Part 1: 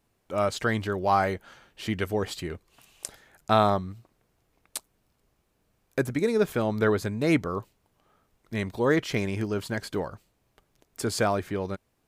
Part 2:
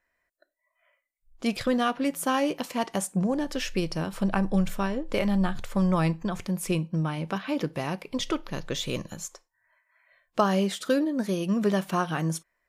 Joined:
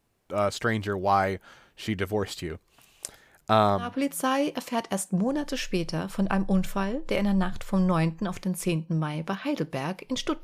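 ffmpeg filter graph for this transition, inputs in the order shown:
-filter_complex "[0:a]apad=whole_dur=10.43,atrim=end=10.43,atrim=end=3.99,asetpts=PTS-STARTPTS[s0];[1:a]atrim=start=1.78:end=8.46,asetpts=PTS-STARTPTS[s1];[s0][s1]acrossfade=d=0.24:c1=tri:c2=tri"

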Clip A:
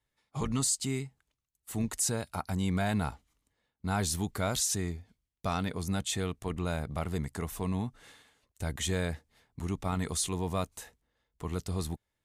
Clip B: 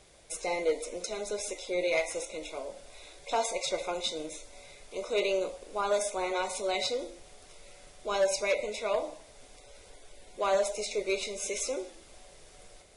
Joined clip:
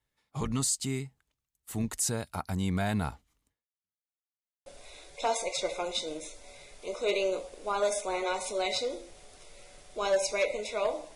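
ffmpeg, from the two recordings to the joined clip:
-filter_complex "[0:a]apad=whole_dur=11.15,atrim=end=11.15,asplit=2[s0][s1];[s0]atrim=end=4.03,asetpts=PTS-STARTPTS,afade=t=out:st=3.49:d=0.54:c=exp[s2];[s1]atrim=start=4.03:end=4.66,asetpts=PTS-STARTPTS,volume=0[s3];[1:a]atrim=start=2.75:end=9.24,asetpts=PTS-STARTPTS,afade=t=in:d=0.004:c=hsin[s4];[s2][s3][s4]concat=n=3:v=0:a=1"

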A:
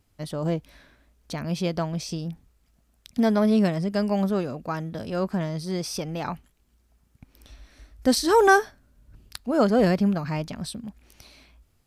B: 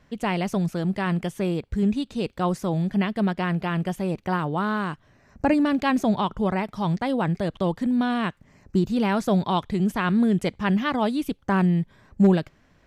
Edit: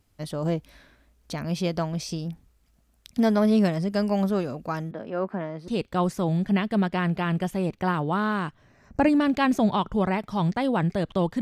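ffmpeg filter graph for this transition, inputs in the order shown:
-filter_complex "[0:a]asettb=1/sr,asplit=3[s0][s1][s2];[s0]atrim=end=4.914[s3];[s1]atrim=start=4.91:end=5.68,asetpts=PTS-STARTPTS,afade=t=in:d=0.004:c=qsin,afade=t=out:st=0.766:d=0.004:c=qsin,acrossover=split=200 2500:gain=0.126 1 0.0708[s4][s5][s6];[s4][s5][s6]amix=inputs=3:normalize=0[s7];[s2]atrim=start=5.676[s8];[s3][s7]acrossfade=d=0.004:c1=hsin:c2=qsin[s9];[s9][s8]acrossfade=d=0.004:c1=qsin:c2=hsin,apad=whole_dur=11.41,atrim=end=11.41,atrim=end=5.682[s10];[1:a]atrim=start=2.128:end=7.86[s11];[s10][s11]acrossfade=d=0.004:c1=hsin:c2=hsin"

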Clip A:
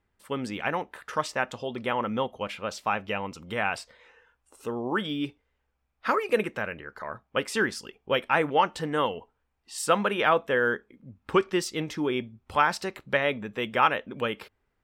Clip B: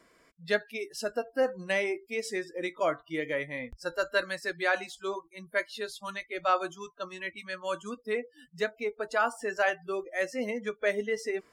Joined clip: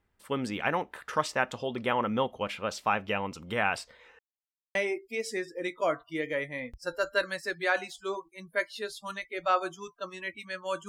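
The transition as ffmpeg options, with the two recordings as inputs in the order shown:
-filter_complex "[0:a]apad=whole_dur=10.88,atrim=end=10.88,asplit=2[s0][s1];[s0]atrim=end=4.19,asetpts=PTS-STARTPTS,afade=t=out:st=4.186:d=0.004:c=hsin[s2];[s1]atrim=start=4.19:end=4.75,asetpts=PTS-STARTPTS,volume=0[s3];[1:a]atrim=start=1.74:end=7.87,asetpts=PTS-STARTPTS,afade=t=in:d=0.004:c=hsin[s4];[s2][s3][s4]concat=n=3:v=0:a=1"

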